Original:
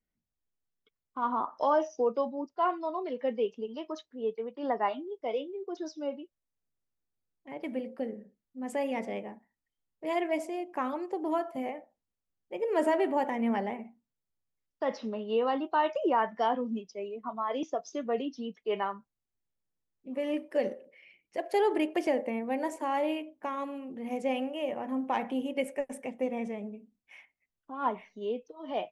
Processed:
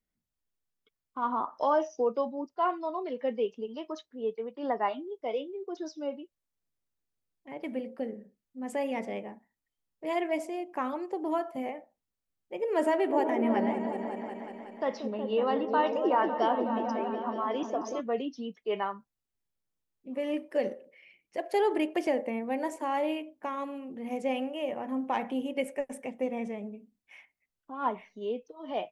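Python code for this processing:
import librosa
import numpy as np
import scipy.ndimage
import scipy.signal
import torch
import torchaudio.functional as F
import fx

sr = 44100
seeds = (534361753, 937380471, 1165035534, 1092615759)

y = fx.echo_opening(x, sr, ms=184, hz=400, octaves=1, feedback_pct=70, wet_db=-3, at=(13.08, 17.99), fade=0.02)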